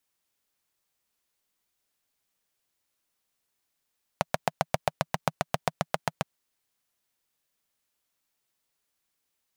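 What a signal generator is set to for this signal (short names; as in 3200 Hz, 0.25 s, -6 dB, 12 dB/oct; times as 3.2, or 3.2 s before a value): single-cylinder engine model, steady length 2.02 s, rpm 900, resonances 160/650 Hz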